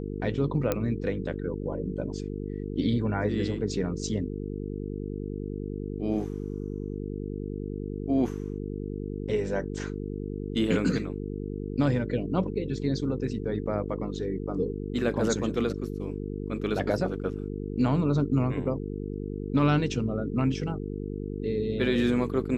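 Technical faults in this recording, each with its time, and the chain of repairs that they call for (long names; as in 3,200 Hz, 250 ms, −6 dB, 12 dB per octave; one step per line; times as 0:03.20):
mains buzz 50 Hz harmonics 9 −34 dBFS
0:00.72: click −12 dBFS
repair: click removal
hum removal 50 Hz, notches 9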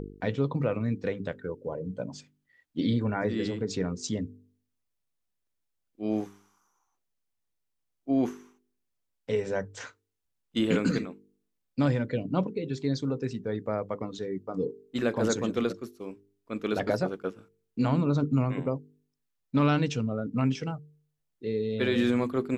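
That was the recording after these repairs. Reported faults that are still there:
none of them is left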